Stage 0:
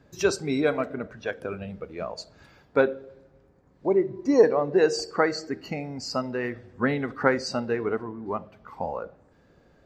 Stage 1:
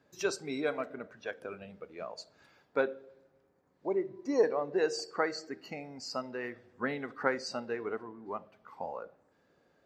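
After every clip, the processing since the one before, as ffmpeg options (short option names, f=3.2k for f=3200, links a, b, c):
-af "highpass=f=340:p=1,volume=-7dB"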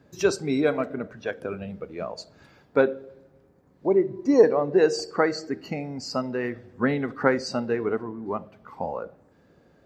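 -af "lowshelf=f=320:g=12,volume=6dB"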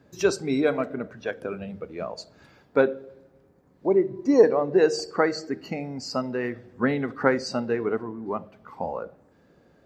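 -af "bandreject=f=50:t=h:w=6,bandreject=f=100:t=h:w=6,bandreject=f=150:t=h:w=6"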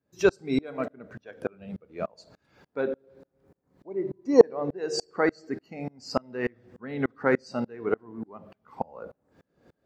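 -af "aeval=exprs='val(0)*pow(10,-32*if(lt(mod(-3.4*n/s,1),2*abs(-3.4)/1000),1-mod(-3.4*n/s,1)/(2*abs(-3.4)/1000),(mod(-3.4*n/s,1)-2*abs(-3.4)/1000)/(1-2*abs(-3.4)/1000))/20)':c=same,volume=4.5dB"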